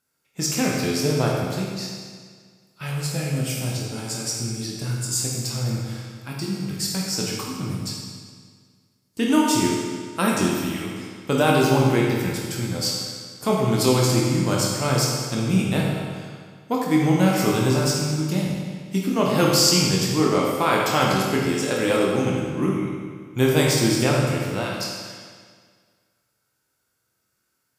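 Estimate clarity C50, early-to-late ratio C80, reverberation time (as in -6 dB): 0.0 dB, 2.0 dB, 1.8 s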